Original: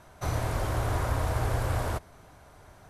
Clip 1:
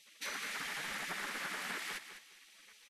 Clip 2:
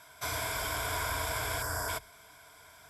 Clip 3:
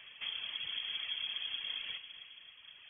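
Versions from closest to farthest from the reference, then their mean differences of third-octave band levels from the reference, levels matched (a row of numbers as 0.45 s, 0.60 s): 2, 1, 3; 7.5 dB, 11.5 dB, 18.5 dB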